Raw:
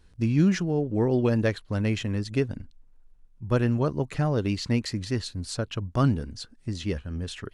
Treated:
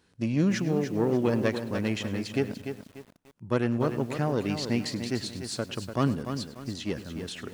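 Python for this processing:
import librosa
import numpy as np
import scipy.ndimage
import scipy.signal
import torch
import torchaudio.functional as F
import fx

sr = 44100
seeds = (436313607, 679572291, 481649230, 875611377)

y = fx.diode_clip(x, sr, knee_db=-18.5)
y = scipy.signal.sosfilt(scipy.signal.butter(2, 160.0, 'highpass', fs=sr, output='sos'), y)
y = fx.echo_feedback(y, sr, ms=102, feedback_pct=31, wet_db=-18.0)
y = fx.echo_crushed(y, sr, ms=294, feedback_pct=35, bits=8, wet_db=-8.0)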